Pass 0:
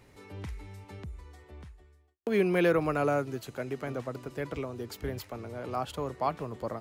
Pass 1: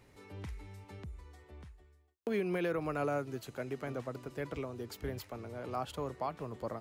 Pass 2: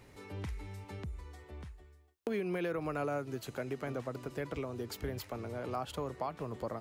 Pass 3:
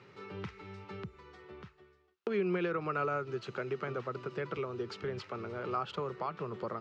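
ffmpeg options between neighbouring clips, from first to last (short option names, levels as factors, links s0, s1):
-af "alimiter=limit=0.0891:level=0:latency=1:release=194,volume=0.631"
-af "acompressor=threshold=0.00891:ratio=2,volume=1.68"
-af "highpass=f=110:w=0.5412,highpass=f=110:w=1.3066,equalizer=f=190:t=q:w=4:g=5,equalizer=f=270:t=q:w=4:g=-10,equalizer=f=380:t=q:w=4:g=7,equalizer=f=680:t=q:w=4:g=-5,equalizer=f=1300:t=q:w=4:g=10,equalizer=f=2700:t=q:w=4:g=4,lowpass=f=5200:w=0.5412,lowpass=f=5200:w=1.3066"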